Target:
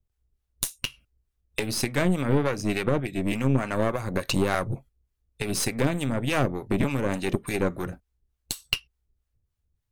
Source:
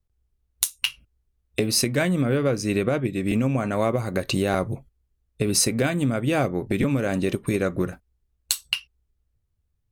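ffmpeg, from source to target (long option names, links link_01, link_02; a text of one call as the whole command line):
ffmpeg -i in.wav -filter_complex "[0:a]acrossover=split=660[link_01][link_02];[link_01]aeval=exprs='val(0)*(1-0.7/2+0.7/2*cos(2*PI*3.4*n/s))':channel_layout=same[link_03];[link_02]aeval=exprs='val(0)*(1-0.7/2-0.7/2*cos(2*PI*3.4*n/s))':channel_layout=same[link_04];[link_03][link_04]amix=inputs=2:normalize=0,aeval=exprs='0.398*(cos(1*acos(clip(val(0)/0.398,-1,1)))-cos(1*PI/2))+0.0398*(cos(8*acos(clip(val(0)/0.398,-1,1)))-cos(8*PI/2))':channel_layout=same,volume=1dB" out.wav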